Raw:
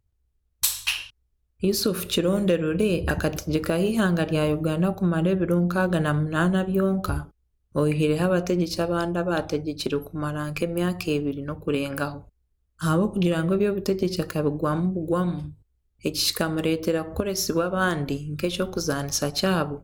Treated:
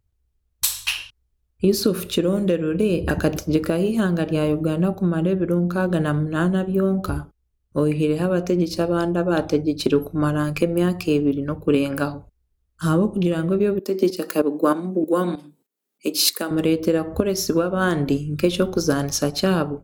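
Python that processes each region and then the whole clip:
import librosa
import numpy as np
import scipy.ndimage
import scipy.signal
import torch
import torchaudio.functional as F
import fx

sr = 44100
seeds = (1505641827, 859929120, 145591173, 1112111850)

y = fx.chain(x, sr, fx.steep_highpass(hz=210.0, slope=36),
    fx.high_shelf(hz=9500.0, db=9.0),
    fx.tremolo_shape(shape='saw_up', hz=3.2, depth_pct=75), at=(13.79, 16.51))
y = fx.dynamic_eq(y, sr, hz=290.0, q=0.75, threshold_db=-34.0, ratio=4.0, max_db=6)
y = fx.rider(y, sr, range_db=10, speed_s=0.5)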